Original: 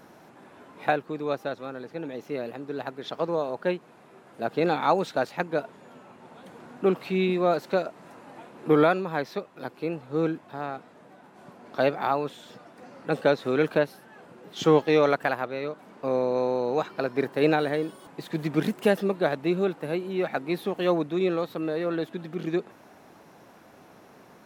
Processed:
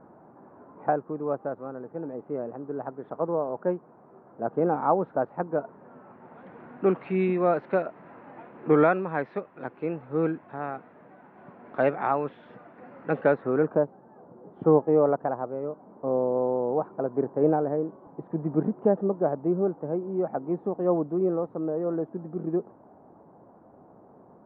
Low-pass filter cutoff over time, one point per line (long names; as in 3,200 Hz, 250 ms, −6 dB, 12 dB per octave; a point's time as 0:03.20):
low-pass filter 24 dB per octave
0:05.49 1,200 Hz
0:06.52 2,200 Hz
0:13.20 2,200 Hz
0:13.85 1,000 Hz